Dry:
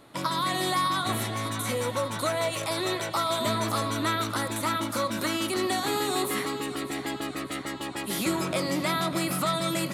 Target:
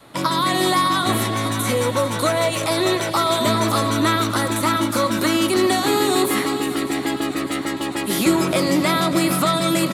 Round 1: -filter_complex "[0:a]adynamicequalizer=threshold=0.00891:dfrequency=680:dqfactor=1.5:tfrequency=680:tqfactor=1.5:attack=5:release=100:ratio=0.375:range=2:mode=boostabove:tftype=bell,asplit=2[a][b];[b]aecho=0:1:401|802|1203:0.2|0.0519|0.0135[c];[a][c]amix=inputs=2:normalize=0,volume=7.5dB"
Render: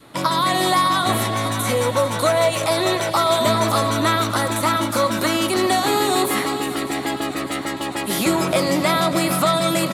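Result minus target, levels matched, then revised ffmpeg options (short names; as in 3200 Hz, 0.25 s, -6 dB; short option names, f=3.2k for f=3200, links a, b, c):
250 Hz band -3.0 dB
-filter_complex "[0:a]adynamicequalizer=threshold=0.00891:dfrequency=320:dqfactor=1.5:tfrequency=320:tqfactor=1.5:attack=5:release=100:ratio=0.375:range=2:mode=boostabove:tftype=bell,asplit=2[a][b];[b]aecho=0:1:401|802|1203:0.2|0.0519|0.0135[c];[a][c]amix=inputs=2:normalize=0,volume=7.5dB"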